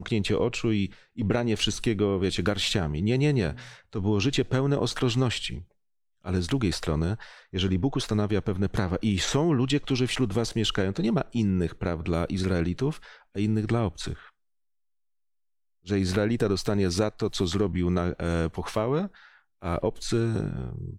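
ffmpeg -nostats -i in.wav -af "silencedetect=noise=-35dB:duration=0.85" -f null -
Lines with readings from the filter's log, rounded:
silence_start: 14.14
silence_end: 15.87 | silence_duration: 1.74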